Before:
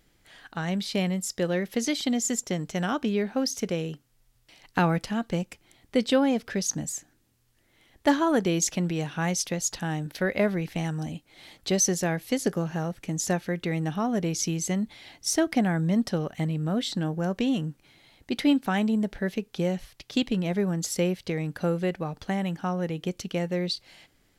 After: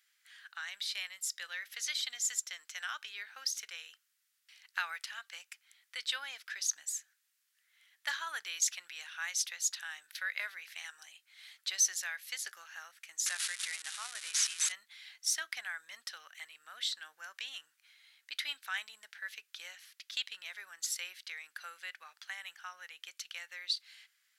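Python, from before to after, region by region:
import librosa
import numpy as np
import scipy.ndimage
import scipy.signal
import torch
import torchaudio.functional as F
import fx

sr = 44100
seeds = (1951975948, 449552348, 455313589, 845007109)

y = fx.chain(x, sr, fx.crossing_spikes(level_db=-23.5),
    fx.highpass(hz=240.0, slope=12),
    fx.resample_bad(factor=2, down='none', up='filtered'), at=(13.26, 14.72))
y = scipy.signal.sosfilt(scipy.signal.cheby1(3, 1.0, 1500.0, 'highpass', fs=sr, output='sos'), y)
y = fx.dynamic_eq(y, sr, hz=3800.0, q=5.2, threshold_db=-53.0, ratio=4.0, max_db=4)
y = y * 10.0 ** (-3.5 / 20.0)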